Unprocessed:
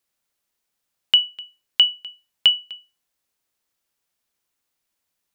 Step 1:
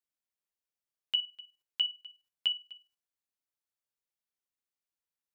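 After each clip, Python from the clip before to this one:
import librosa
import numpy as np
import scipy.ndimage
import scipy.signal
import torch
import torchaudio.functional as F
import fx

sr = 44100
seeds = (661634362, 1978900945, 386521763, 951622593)

y = fx.level_steps(x, sr, step_db=11)
y = F.gain(torch.from_numpy(y), -8.0).numpy()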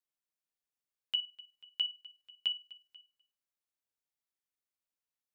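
y = x + 10.0 ** (-24.0 / 20.0) * np.pad(x, (int(489 * sr / 1000.0), 0))[:len(x)]
y = F.gain(torch.from_numpy(y), -3.0).numpy()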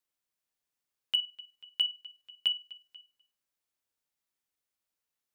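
y = np.clip(x, -10.0 ** (-21.0 / 20.0), 10.0 ** (-21.0 / 20.0))
y = F.gain(torch.from_numpy(y), 4.5).numpy()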